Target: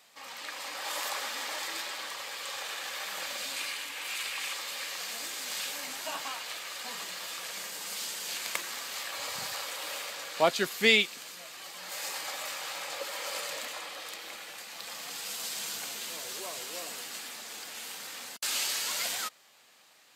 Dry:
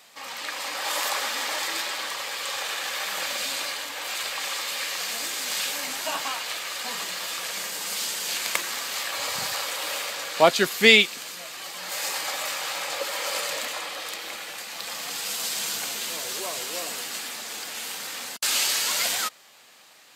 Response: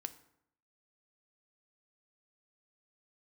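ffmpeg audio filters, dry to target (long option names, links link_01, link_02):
-filter_complex "[0:a]asettb=1/sr,asplit=3[link_01][link_02][link_03];[link_01]atrim=end=3.564[link_04];[link_02]atrim=start=3.56:end=4.53,asetpts=PTS-STARTPTS,afade=type=in:duration=0.004:curve=qsin,afade=type=out:start_time=0.966:duration=0.004:curve=qsin,equalizer=frequency=630:width_type=o:width=0.67:gain=-5,equalizer=frequency=2500:width_type=o:width=0.67:gain=6,equalizer=frequency=10000:width_type=o:width=0.67:gain=4[link_05];[link_03]atrim=start=4.526[link_06];[link_04][link_05]acrossfade=duration=0.004:curve1=hsin:curve2=qsin[link_07];[link_07][link_06]acrossfade=duration=0.004:curve1=qsin:curve2=hsin,volume=-7.5dB"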